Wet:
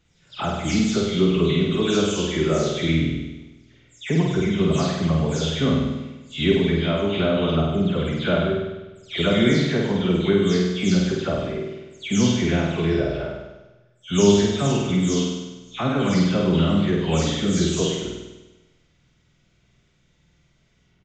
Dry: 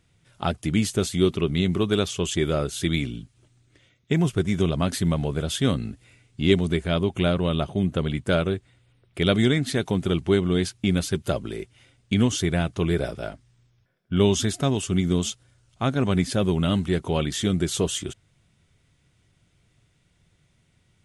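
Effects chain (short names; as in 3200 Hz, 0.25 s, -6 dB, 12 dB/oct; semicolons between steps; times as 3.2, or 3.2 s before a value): spectral delay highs early, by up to 0.215 s; flutter echo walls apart 8.5 m, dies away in 1.1 s; downsampling 16000 Hz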